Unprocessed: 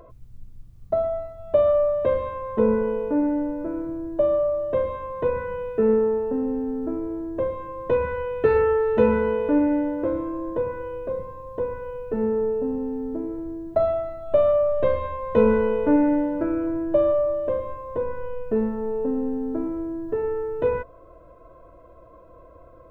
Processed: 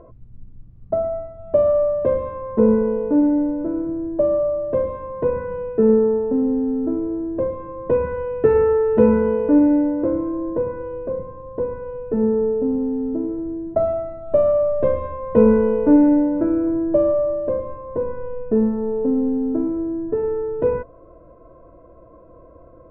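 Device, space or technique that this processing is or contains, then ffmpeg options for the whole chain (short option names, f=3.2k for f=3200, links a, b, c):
phone in a pocket: -af "lowpass=3.1k,equalizer=f=230:t=o:w=2:g=6,highshelf=f=2.2k:g=-12,volume=1dB"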